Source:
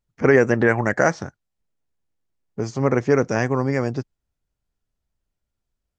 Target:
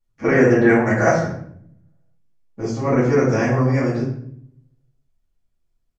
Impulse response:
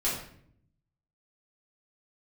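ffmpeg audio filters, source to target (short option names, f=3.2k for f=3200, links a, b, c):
-filter_complex "[1:a]atrim=start_sample=2205[a];[0:a][a]afir=irnorm=-1:irlink=0,aresample=32000,aresample=44100,volume=-6.5dB"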